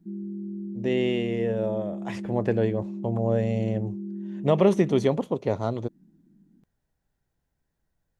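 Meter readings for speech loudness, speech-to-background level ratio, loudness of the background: -26.0 LUFS, 9.5 dB, -35.5 LUFS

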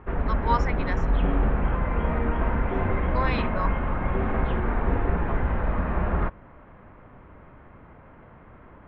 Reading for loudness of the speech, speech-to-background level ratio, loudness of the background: -31.5 LUFS, -4.5 dB, -27.0 LUFS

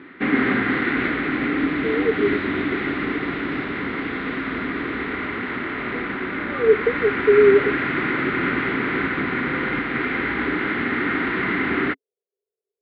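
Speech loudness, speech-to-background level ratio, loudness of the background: -19.5 LUFS, 3.5 dB, -23.0 LUFS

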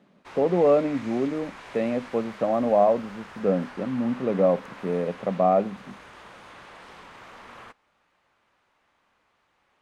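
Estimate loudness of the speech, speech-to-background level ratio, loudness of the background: -24.5 LUFS, 19.0 dB, -43.5 LUFS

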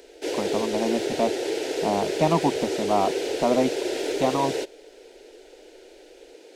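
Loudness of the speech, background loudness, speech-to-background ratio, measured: -26.5 LUFS, -28.0 LUFS, 1.5 dB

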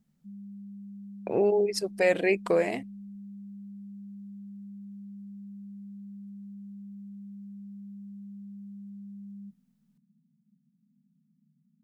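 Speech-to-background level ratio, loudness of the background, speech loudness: 18.0 dB, -44.5 LUFS, -26.5 LUFS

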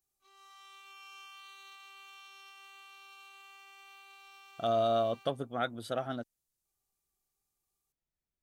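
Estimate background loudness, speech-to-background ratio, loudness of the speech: -52.5 LUFS, 19.5 dB, -33.0 LUFS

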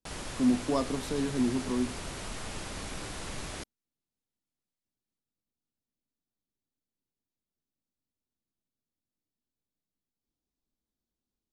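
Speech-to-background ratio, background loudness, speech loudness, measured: 9.0 dB, -39.5 LUFS, -30.5 LUFS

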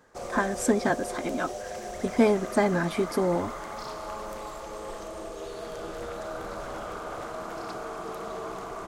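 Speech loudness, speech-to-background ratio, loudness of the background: -27.0 LUFS, 10.0 dB, -37.0 LUFS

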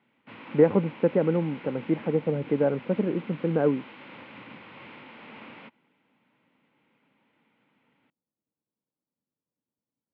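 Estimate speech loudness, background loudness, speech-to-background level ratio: -26.0 LUFS, -44.5 LUFS, 18.5 dB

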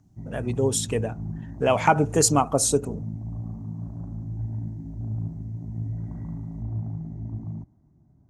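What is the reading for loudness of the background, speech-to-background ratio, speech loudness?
-34.5 LUFS, 11.5 dB, -23.0 LUFS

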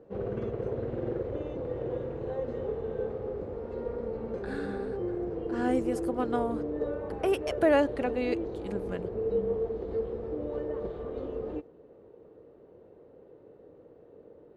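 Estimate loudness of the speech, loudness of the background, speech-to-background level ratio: -31.0 LUFS, -34.5 LUFS, 3.5 dB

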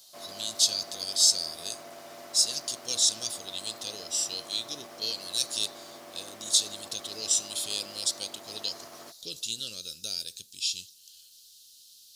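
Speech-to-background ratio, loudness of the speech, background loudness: 18.5 dB, -28.5 LUFS, -47.0 LUFS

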